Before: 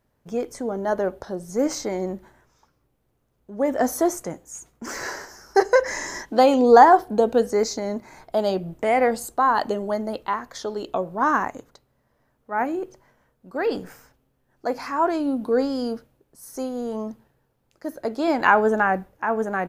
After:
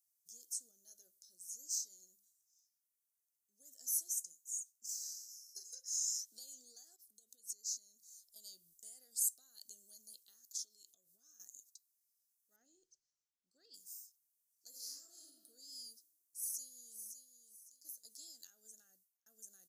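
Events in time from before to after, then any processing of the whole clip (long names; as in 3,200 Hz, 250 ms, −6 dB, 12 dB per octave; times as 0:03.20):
0:00.71–0:05.63: flanger 1.1 Hz, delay 6.1 ms, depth 1.9 ms, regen −84%
0:06.96–0:08.36: downward compressor 16 to 1, threshold −31 dBFS
0:10.40–0:11.40: downward compressor, threshold −32 dBFS
0:12.56–0:13.74: high-frequency loss of the air 160 metres
0:14.69–0:15.26: thrown reverb, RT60 1.3 s, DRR −6 dB
0:15.89–0:16.99: delay throw 560 ms, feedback 30%, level −8.5 dB
0:18.61–0:19.26: fade out
whole clip: downward compressor 6 to 1, threshold −22 dBFS; inverse Chebyshev high-pass filter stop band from 2,500 Hz, stop band 50 dB; level +3 dB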